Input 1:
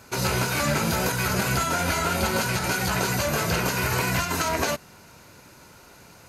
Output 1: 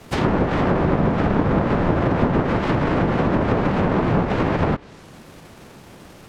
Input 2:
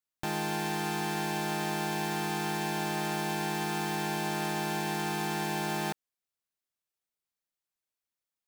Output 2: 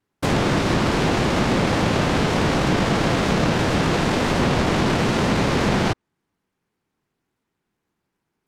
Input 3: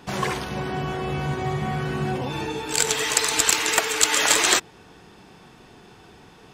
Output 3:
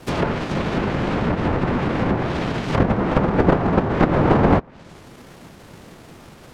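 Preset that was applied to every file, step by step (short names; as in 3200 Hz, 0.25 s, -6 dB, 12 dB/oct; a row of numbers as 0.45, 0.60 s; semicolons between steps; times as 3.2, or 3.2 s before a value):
sample sorter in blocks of 256 samples; whisperiser; treble ducked by the level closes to 1200 Hz, closed at -20 dBFS; match loudness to -20 LUFS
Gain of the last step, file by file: +6.5, +13.0, +6.0 dB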